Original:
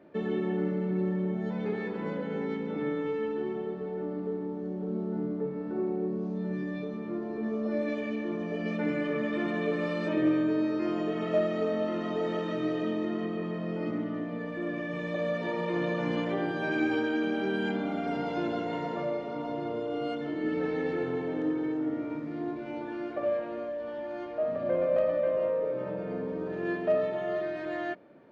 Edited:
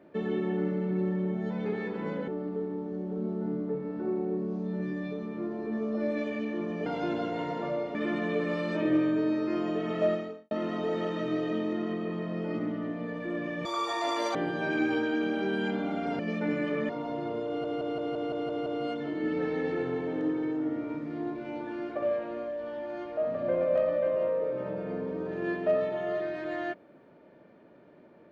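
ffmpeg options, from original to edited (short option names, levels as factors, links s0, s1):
-filter_complex "[0:a]asplit=16[s0][s1][s2][s3][s4][s5][s6][s7][s8][s9][s10][s11][s12][s13][s14][s15];[s0]atrim=end=2.282[s16];[s1]atrim=start=3.988:end=8.572[s17];[s2]atrim=start=18.198:end=19.292[s18];[s3]atrim=start=9.268:end=11.83,asetpts=PTS-STARTPTS,afade=t=out:st=2.182:d=0.38:c=qua[s19];[s4]atrim=start=11.83:end=14.974,asetpts=PTS-STARTPTS,afade=t=in:d=0.004:c=hsin[s20];[s5]atrim=start=14.97:end=16.36,asetpts=PTS-STARTPTS,asetrate=87318,aresample=44100,atrim=end_sample=30959,asetpts=PTS-STARTPTS[s21];[s6]atrim=start=16.356:end=18.202[s22];[s7]atrim=start=8.568:end=9.272[s23];[s8]atrim=start=19.288:end=20.042[s24];[s9]atrim=start=19.868:end=20.042[s25];[s10]atrim=start=19.868:end=20.042[s26];[s11]atrim=start=19.868:end=20.042[s27];[s12]atrim=start=19.868:end=20.042[s28];[s13]atrim=start=19.868:end=20.042[s29];[s14]atrim=start=19.868:end=20.042[s30];[s15]atrim=start=19.868[s31];[s16][s17]acrossfade=d=0.004:c1=hsin:c2=hsin[s32];[s32][s18]acrossfade=d=0.004:c1=hsin:c2=hsin[s33];[s19][s20]concat=n=2:v=0:a=1[s34];[s33][s34]acrossfade=d=0.004:c1=hsin:c2=hsin[s35];[s35][s21]acrossfade=d=0.004:c1=hsin:c2=hsin[s36];[s36][s22]acrossfade=d=0.004:c1=hsin:c2=hsin[s37];[s37][s23]acrossfade=d=0.004:c1=hsin:c2=hsin[s38];[s38][s24]acrossfade=d=0.004:c1=hsin:c2=hsin[s39];[s39][s25]acrossfade=d=0.004:c1=hsin:c2=hsin[s40];[s40][s26]acrossfade=d=0.004:c1=hsin:c2=hsin[s41];[s41][s27]acrossfade=d=0.004:c1=hsin:c2=hsin[s42];[s42][s28]acrossfade=d=0.004:c1=hsin:c2=hsin[s43];[s43][s29]acrossfade=d=0.004:c1=hsin:c2=hsin[s44];[s44][s30]acrossfade=d=0.004:c1=hsin:c2=hsin[s45];[s45][s31]acrossfade=d=0.004:c1=hsin:c2=hsin"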